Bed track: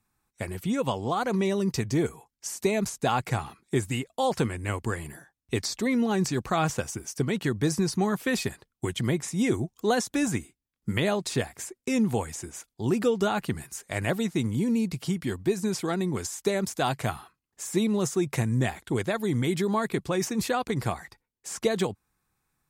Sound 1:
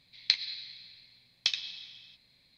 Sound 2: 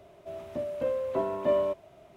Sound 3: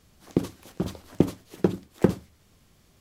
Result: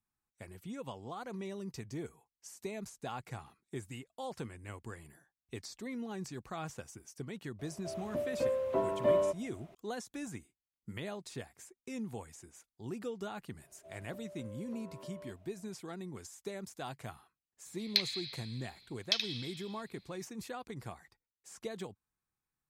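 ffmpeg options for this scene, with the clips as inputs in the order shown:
-filter_complex "[2:a]asplit=2[s0][s1];[0:a]volume=0.158[s2];[s1]acompressor=threshold=0.0224:ratio=6:attack=3.2:release=140:knee=1:detection=peak[s3];[1:a]asoftclip=type=tanh:threshold=0.316[s4];[s0]atrim=end=2.16,asetpts=PTS-STARTPTS,volume=0.75,afade=t=in:d=0.004:c=hsin,afade=t=out:st=2.156:d=0.004:c=hsin,adelay=7590[s5];[s3]atrim=end=2.16,asetpts=PTS-STARTPTS,volume=0.188,afade=t=in:d=0.004:c=hsin,afade=t=out:st=2.156:d=0.004:c=hsin,adelay=13580[s6];[s4]atrim=end=2.57,asetpts=PTS-STARTPTS,volume=0.841,afade=t=in:d=0.004:c=hsin,afade=t=out:st=2.566:d=0.004:c=hsin,adelay=17660[s7];[s2][s5][s6][s7]amix=inputs=4:normalize=0"

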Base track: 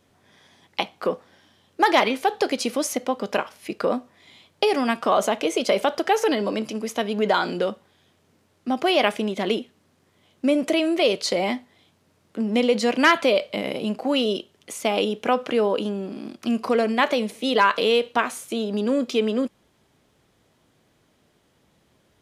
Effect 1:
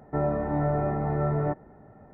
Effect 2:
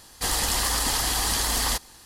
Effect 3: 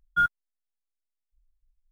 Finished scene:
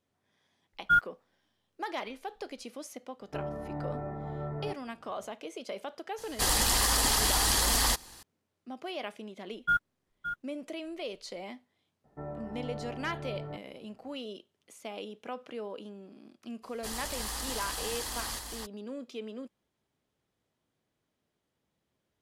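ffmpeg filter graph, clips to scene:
-filter_complex "[3:a]asplit=2[s0][s1];[1:a]asplit=2[s2][s3];[2:a]asplit=2[s4][s5];[0:a]volume=0.119[s6];[s1]aecho=1:1:568:0.335[s7];[s5]aecho=1:1:342:0.631[s8];[s0]atrim=end=1.91,asetpts=PTS-STARTPTS,volume=0.944,afade=t=in:d=0.004:c=hsin,afade=t=out:st=1.906:d=0.004:c=hsin,adelay=730[s9];[s2]atrim=end=2.13,asetpts=PTS-STARTPTS,volume=0.282,afade=t=in:d=0.004:c=hsin,afade=t=out:st=2.126:d=0.004:c=hsin,adelay=3200[s10];[s4]atrim=end=2.05,asetpts=PTS-STARTPTS,volume=0.841,afade=t=in:d=0.004:c=hsin,afade=t=out:st=2.046:d=0.004:c=hsin,adelay=272538S[s11];[s7]atrim=end=1.91,asetpts=PTS-STARTPTS,volume=0.631,afade=t=in:d=0.004:c=hsin,afade=t=out:st=1.906:d=0.004:c=hsin,adelay=9510[s12];[s3]atrim=end=2.13,asetpts=PTS-STARTPTS,volume=0.188,afade=t=in:d=0.004:c=hsin,afade=t=out:st=2.126:d=0.004:c=hsin,adelay=12040[s13];[s8]atrim=end=2.05,asetpts=PTS-STARTPTS,volume=0.211,afade=t=in:d=0.02,afade=t=out:st=2.03:d=0.02,adelay=16620[s14];[s6][s9][s10][s11][s12][s13][s14]amix=inputs=7:normalize=0"

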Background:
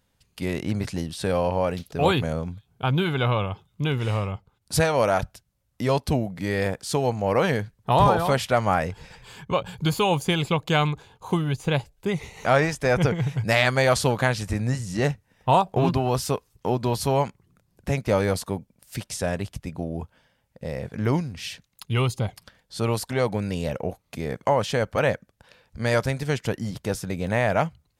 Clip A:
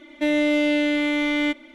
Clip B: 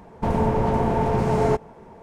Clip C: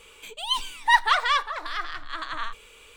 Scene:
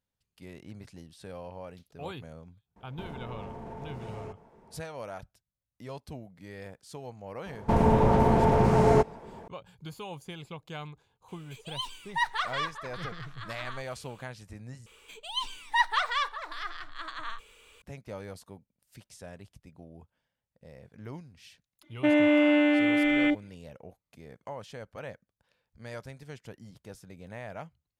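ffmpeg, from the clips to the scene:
-filter_complex "[2:a]asplit=2[s0][s1];[3:a]asplit=2[s2][s3];[0:a]volume=0.112[s4];[s0]acompressor=threshold=0.0501:ratio=6:attack=3.2:release=140:knee=1:detection=peak[s5];[s3]acrossover=split=8300[s6][s7];[s7]acompressor=threshold=0.00224:ratio=4:attack=1:release=60[s8];[s6][s8]amix=inputs=2:normalize=0[s9];[1:a]afwtdn=0.0562[s10];[s4]asplit=2[s11][s12];[s11]atrim=end=14.864[s13];[s9]atrim=end=2.96,asetpts=PTS-STARTPTS,volume=0.473[s14];[s12]atrim=start=17.816[s15];[s5]atrim=end=2.02,asetpts=PTS-STARTPTS,volume=0.251,afade=t=in:d=0.004:c=hsin,afade=t=out:st=2.016:d=0.004:c=hsin,adelay=2760[s16];[s1]atrim=end=2.02,asetpts=PTS-STARTPTS,volume=0.944,afade=t=in:d=0.004:c=hsin,afade=t=out:st=2.016:d=0.004:c=hsin,adelay=328986S[s17];[s2]atrim=end=2.96,asetpts=PTS-STARTPTS,volume=0.316,afade=t=in:d=0.004:c=hsin,afade=t=out:st=2.956:d=0.004:c=hsin,adelay=11280[s18];[s10]atrim=end=1.74,asetpts=PTS-STARTPTS,volume=0.891,afade=t=in:d=0.004:c=hsin,afade=t=out:st=1.736:d=0.004:c=hsin,adelay=21820[s19];[s13][s14]acrossfade=d=0.004:c1=hsin:c2=hsin[s20];[s20][s15]acrossfade=d=0.004:c1=hsin:c2=hsin[s21];[s21][s16][s17][s18][s19]amix=inputs=5:normalize=0"

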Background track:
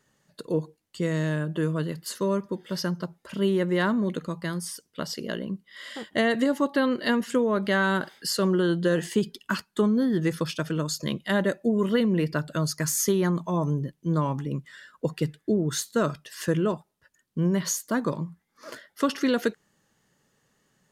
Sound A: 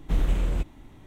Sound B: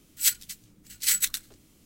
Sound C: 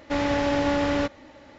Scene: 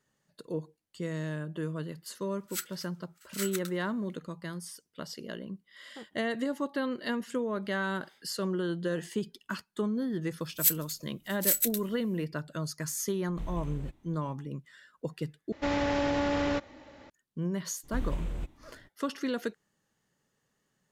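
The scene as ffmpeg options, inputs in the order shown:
-filter_complex "[2:a]asplit=2[s0][s1];[1:a]asplit=2[s2][s3];[0:a]volume=0.376[s4];[s0]highpass=f=1300:t=q:w=11[s5];[s1]equalizer=f=13000:w=1.1:g=14.5[s6];[3:a]acompressor=threshold=0.0447:ratio=6:attack=41:release=44:knee=1:detection=peak[s7];[s4]asplit=2[s8][s9];[s8]atrim=end=15.524[s10];[s7]atrim=end=1.58,asetpts=PTS-STARTPTS,volume=0.668[s11];[s9]atrim=start=17.096[s12];[s5]atrim=end=1.85,asetpts=PTS-STARTPTS,volume=0.2,afade=t=in:d=0.004:c=hsin,afade=t=out:st=1.846:d=0.004:c=hsin,adelay=2310[s13];[s6]atrim=end=1.85,asetpts=PTS-STARTPTS,volume=0.299,afade=t=in:d=0.004:c=hsin,afade=t=out:st=1.846:d=0.004:c=hsin,adelay=10400[s14];[s2]atrim=end=1.06,asetpts=PTS-STARTPTS,volume=0.188,afade=t=in:d=0.004:c=hsin,afade=t=out:st=1.056:d=0.004:c=hsin,adelay=13280[s15];[s3]atrim=end=1.06,asetpts=PTS-STARTPTS,volume=0.335,afade=t=in:d=0.02,afade=t=out:st=1.04:d=0.02,adelay=17830[s16];[s10][s11]acrossfade=d=0.004:c1=hsin:c2=hsin[s17];[s17][s12]acrossfade=d=0.004:c1=hsin:c2=hsin[s18];[s18][s13][s14][s15][s16]amix=inputs=5:normalize=0"

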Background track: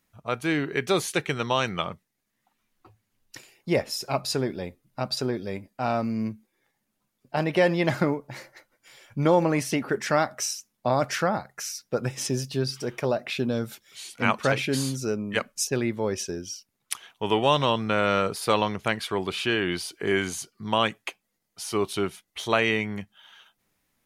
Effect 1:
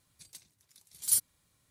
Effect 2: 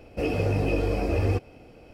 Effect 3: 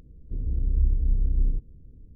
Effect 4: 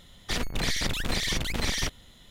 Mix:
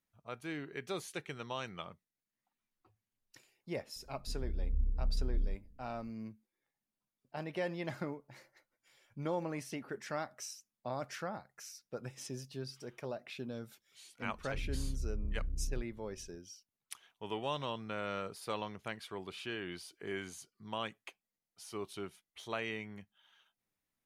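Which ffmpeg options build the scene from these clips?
-filter_complex "[3:a]asplit=2[s0][s1];[0:a]volume=0.158[s2];[s0]aecho=1:1:4.3:0.79[s3];[s1]acompressor=threshold=0.0708:ratio=6:attack=3.2:release=140:knee=1:detection=peak[s4];[s3]atrim=end=2.15,asetpts=PTS-STARTPTS,volume=0.2,afade=t=in:d=0.004:c=hsin,afade=t=out:st=2.146:d=0.004:c=hsin,adelay=3960[s5];[s4]atrim=end=2.15,asetpts=PTS-STARTPTS,volume=0.335,afade=t=in:d=0.004:c=hsin,afade=t=out:st=2.146:d=0.004:c=hsin,adelay=14230[s6];[s2][s5][s6]amix=inputs=3:normalize=0"

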